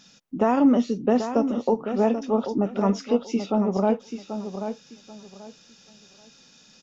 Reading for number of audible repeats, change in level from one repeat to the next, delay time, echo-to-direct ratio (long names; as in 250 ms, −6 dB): 3, −13.0 dB, 785 ms, −9.0 dB